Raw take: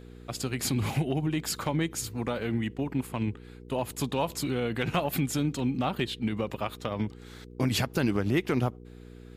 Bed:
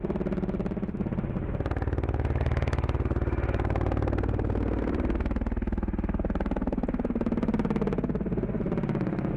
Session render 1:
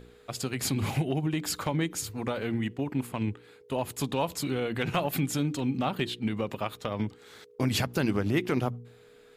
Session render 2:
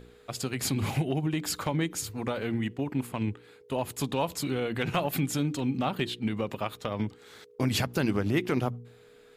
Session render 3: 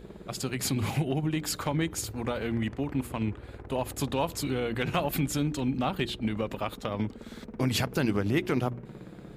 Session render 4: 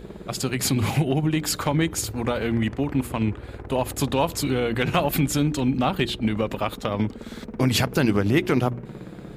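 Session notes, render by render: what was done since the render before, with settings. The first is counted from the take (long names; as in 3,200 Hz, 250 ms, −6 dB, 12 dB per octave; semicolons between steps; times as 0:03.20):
hum removal 60 Hz, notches 6
no processing that can be heard
mix in bed −17 dB
level +6.5 dB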